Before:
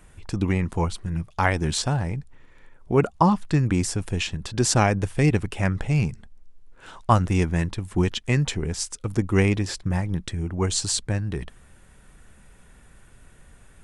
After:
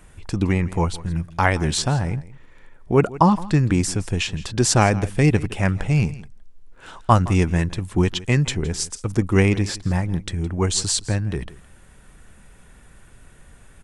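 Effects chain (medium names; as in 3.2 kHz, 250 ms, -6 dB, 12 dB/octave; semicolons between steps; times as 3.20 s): delay 165 ms -18.5 dB; trim +3 dB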